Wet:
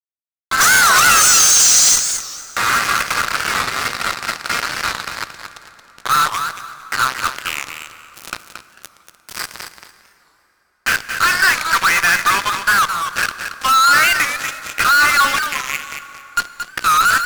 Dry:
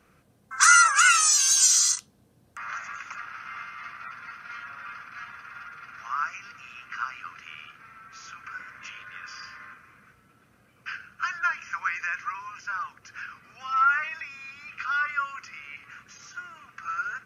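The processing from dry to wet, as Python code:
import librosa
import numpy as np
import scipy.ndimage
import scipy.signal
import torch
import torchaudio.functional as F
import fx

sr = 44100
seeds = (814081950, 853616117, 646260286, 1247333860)

y = fx.high_shelf(x, sr, hz=2100.0, db=-9.0, at=(5.1, 7.18))
y = fx.spec_repair(y, sr, seeds[0], start_s=8.48, length_s=0.86, low_hz=940.0, high_hz=3000.0, source='before')
y = fx.fuzz(y, sr, gain_db=43.0, gate_db=-37.0)
y = fx.echo_feedback(y, sr, ms=226, feedback_pct=21, wet_db=-8.0)
y = fx.rev_plate(y, sr, seeds[1], rt60_s=4.0, hf_ratio=0.65, predelay_ms=0, drr_db=14.0)
y = fx.record_warp(y, sr, rpm=45.0, depth_cents=160.0)
y = y * librosa.db_to_amplitude(3.0)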